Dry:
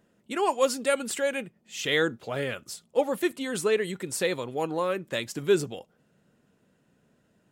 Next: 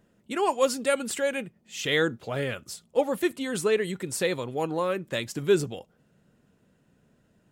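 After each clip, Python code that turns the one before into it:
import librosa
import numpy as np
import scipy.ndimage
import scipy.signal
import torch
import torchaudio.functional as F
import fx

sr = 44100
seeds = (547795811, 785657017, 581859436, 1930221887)

y = fx.low_shelf(x, sr, hz=110.0, db=9.0)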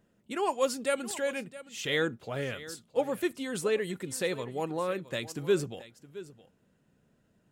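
y = x + 10.0 ** (-16.5 / 20.0) * np.pad(x, (int(667 * sr / 1000.0), 0))[:len(x)]
y = y * librosa.db_to_amplitude(-4.5)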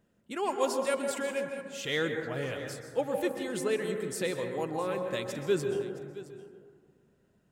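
y = fx.rev_plate(x, sr, seeds[0], rt60_s=1.7, hf_ratio=0.25, predelay_ms=115, drr_db=4.5)
y = y * librosa.db_to_amplitude(-2.0)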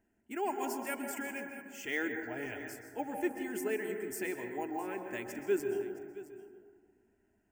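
y = fx.fixed_phaser(x, sr, hz=780.0, stages=8)
y = np.repeat(scipy.signal.resample_poly(y, 1, 2), 2)[:len(y)]
y = y * librosa.db_to_amplitude(-1.0)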